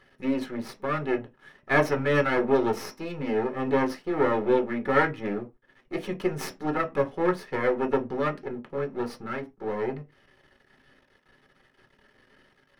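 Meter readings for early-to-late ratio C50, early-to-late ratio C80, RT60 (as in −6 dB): 19.0 dB, 27.5 dB, non-exponential decay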